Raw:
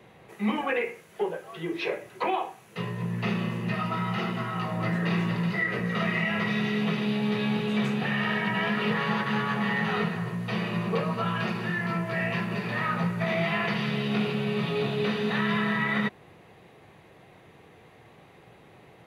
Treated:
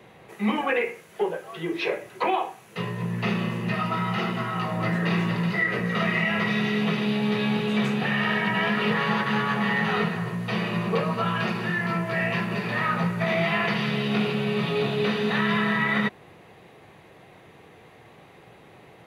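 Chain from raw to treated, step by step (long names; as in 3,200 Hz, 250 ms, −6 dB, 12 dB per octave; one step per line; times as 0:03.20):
low-shelf EQ 180 Hz −3 dB
level +3.5 dB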